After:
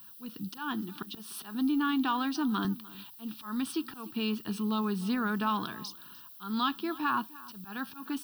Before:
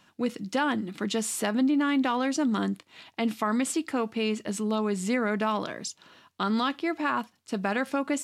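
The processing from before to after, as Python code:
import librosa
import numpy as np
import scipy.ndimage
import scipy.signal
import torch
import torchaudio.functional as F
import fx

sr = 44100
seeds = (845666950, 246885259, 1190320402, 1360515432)

y = fx.highpass(x, sr, hz=190.0, slope=12, at=(0.57, 2.65))
y = fx.auto_swell(y, sr, attack_ms=246.0)
y = fx.dmg_noise_colour(y, sr, seeds[0], colour='violet', level_db=-50.0)
y = fx.fixed_phaser(y, sr, hz=2100.0, stages=6)
y = y + 10.0 ** (-20.0 / 20.0) * np.pad(y, (int(299 * sr / 1000.0), 0))[:len(y)]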